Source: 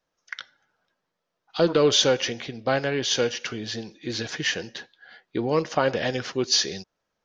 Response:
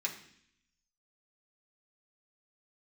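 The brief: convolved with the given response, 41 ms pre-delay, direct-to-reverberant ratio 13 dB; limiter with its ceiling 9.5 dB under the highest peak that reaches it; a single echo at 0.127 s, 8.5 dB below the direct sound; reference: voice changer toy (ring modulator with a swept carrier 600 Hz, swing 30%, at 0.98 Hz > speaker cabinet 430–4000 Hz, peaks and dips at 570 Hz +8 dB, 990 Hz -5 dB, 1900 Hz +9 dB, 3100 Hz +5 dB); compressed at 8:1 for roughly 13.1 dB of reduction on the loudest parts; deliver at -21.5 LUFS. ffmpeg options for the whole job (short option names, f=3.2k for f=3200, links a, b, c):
-filter_complex "[0:a]acompressor=threshold=-29dB:ratio=8,alimiter=limit=-23.5dB:level=0:latency=1,aecho=1:1:127:0.376,asplit=2[a][b];[1:a]atrim=start_sample=2205,adelay=41[c];[b][c]afir=irnorm=-1:irlink=0,volume=-16dB[d];[a][d]amix=inputs=2:normalize=0,aeval=exprs='val(0)*sin(2*PI*600*n/s+600*0.3/0.98*sin(2*PI*0.98*n/s))':c=same,highpass=430,equalizer=f=570:t=q:w=4:g=8,equalizer=f=990:t=q:w=4:g=-5,equalizer=f=1.9k:t=q:w=4:g=9,equalizer=f=3.1k:t=q:w=4:g=5,lowpass=f=4k:w=0.5412,lowpass=f=4k:w=1.3066,volume=16.5dB"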